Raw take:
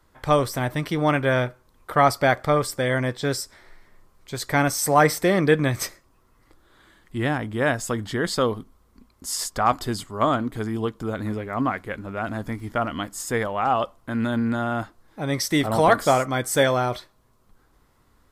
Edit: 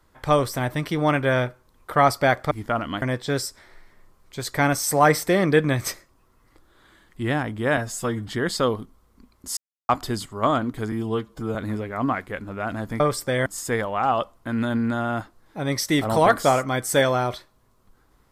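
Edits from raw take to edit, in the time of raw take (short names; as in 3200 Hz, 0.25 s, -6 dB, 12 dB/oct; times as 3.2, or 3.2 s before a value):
2.51–2.97 swap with 12.57–13.08
7.72–8.06 stretch 1.5×
9.35–9.67 mute
10.7–11.12 stretch 1.5×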